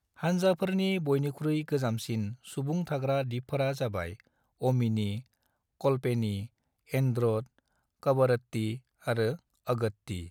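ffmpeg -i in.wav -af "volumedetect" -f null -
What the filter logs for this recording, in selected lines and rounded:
mean_volume: -30.5 dB
max_volume: -14.4 dB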